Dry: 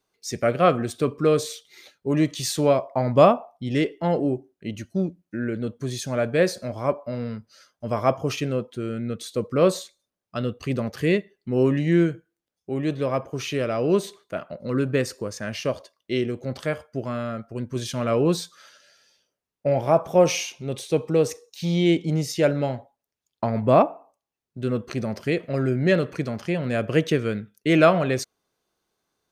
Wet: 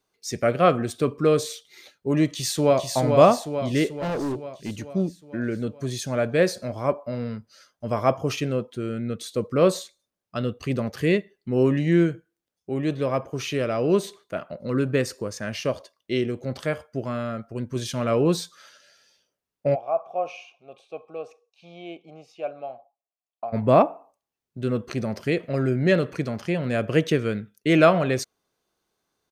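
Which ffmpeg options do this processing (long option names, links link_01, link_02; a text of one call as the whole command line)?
ffmpeg -i in.wav -filter_complex "[0:a]asplit=2[link_01][link_02];[link_02]afade=type=in:start_time=2.26:duration=0.01,afade=type=out:start_time=2.84:duration=0.01,aecho=0:1:440|880|1320|1760|2200|2640|3080|3520|3960:0.595662|0.357397|0.214438|0.128663|0.0771978|0.0463187|0.0277912|0.0166747|0.0100048[link_03];[link_01][link_03]amix=inputs=2:normalize=0,asettb=1/sr,asplit=3[link_04][link_05][link_06];[link_04]atrim=end=3.944[link_07];[link_05]atrim=start=3.94:end=4.9,asetpts=PTS-STARTPTS,afade=type=in:duration=0.004:curve=qsin,afade=type=out:start_time=0.956:duration=0.004:curve=qsin,asoftclip=type=hard:threshold=-24.5dB[link_08];[link_06]atrim=start=4.896[link_09];[link_07][link_08]acrossfade=duration=0.004:curve1=hsin:curve2=qsin[link_10];[link_10][link_09]acrossfade=duration=0.004:curve1=qsin:curve2=hsin,asplit=3[link_11][link_12][link_13];[link_11]afade=type=out:start_time=19.74:duration=0.02[link_14];[link_12]asplit=3[link_15][link_16][link_17];[link_15]bandpass=frequency=730:width_type=q:width=8,volume=0dB[link_18];[link_16]bandpass=frequency=1090:width_type=q:width=8,volume=-6dB[link_19];[link_17]bandpass=frequency=2440:width_type=q:width=8,volume=-9dB[link_20];[link_18][link_19][link_20]amix=inputs=3:normalize=0,afade=type=in:start_time=19.74:duration=0.02,afade=type=out:start_time=23.52:duration=0.02[link_21];[link_13]afade=type=in:start_time=23.52:duration=0.02[link_22];[link_14][link_21][link_22]amix=inputs=3:normalize=0" out.wav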